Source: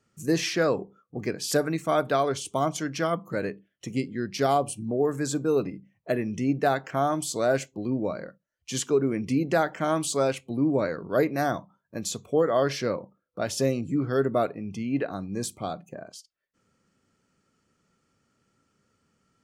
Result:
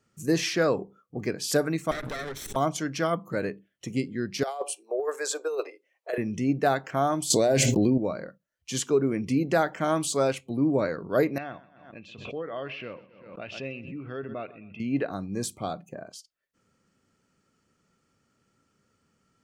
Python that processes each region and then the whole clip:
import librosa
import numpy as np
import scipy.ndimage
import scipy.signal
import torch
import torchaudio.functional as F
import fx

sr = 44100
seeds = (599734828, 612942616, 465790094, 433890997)

y = fx.chain(x, sr, fx.lower_of_two(delay_ms=0.53),
    fx.tube_stage(drive_db=31.0, bias=0.75),
    fx.pre_swell(db_per_s=37.0), at=(1.91, 2.56))
y = fx.chain(y, sr, fx.steep_highpass(hz=410.0, slope=48),
    fx.over_compress(threshold_db=-27.0, ratio=-0.5),
    fx.high_shelf(hz=11000.0, db=-5.5), at=(4.43, 6.18))
y = fx.chain(y, sr, fx.peak_eq(hz=1300.0, db=-14.5, octaves=0.59),
    fx.hum_notches(base_hz=60, count=4),
    fx.env_flatten(amount_pct=100), at=(7.3, 7.98))
y = fx.chain(y, sr, fx.ladder_lowpass(hz=2800.0, resonance_pct=85),
    fx.echo_feedback(ms=127, feedback_pct=33, wet_db=-18),
    fx.pre_swell(db_per_s=64.0), at=(11.38, 14.8))